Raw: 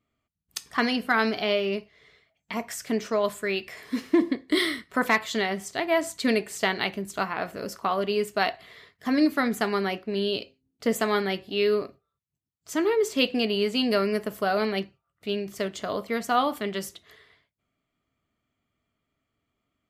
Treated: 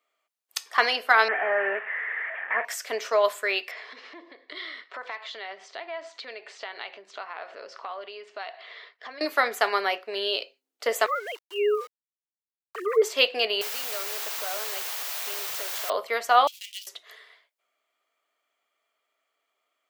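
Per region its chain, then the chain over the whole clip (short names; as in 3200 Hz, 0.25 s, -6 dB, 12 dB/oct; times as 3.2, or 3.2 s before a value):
1.28–2.65 delta modulation 16 kbps, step -40 dBFS + synth low-pass 1800 Hz, resonance Q 11
3.71–9.21 compressor 4:1, threshold -39 dBFS + LPF 4600 Hz 24 dB/oct
11.06–13.02 sine-wave speech + bell 1100 Hz +12 dB 0.38 oct + sample gate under -46.5 dBFS
13.61–15.9 compressor 4:1, threshold -39 dBFS + requantised 6-bit, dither triangular
16.47–16.87 switching dead time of 0.095 ms + elliptic high-pass 2700 Hz, stop band 70 dB
whole clip: HPF 510 Hz 24 dB/oct; dynamic EQ 9600 Hz, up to -6 dB, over -51 dBFS, Q 0.91; gain +5 dB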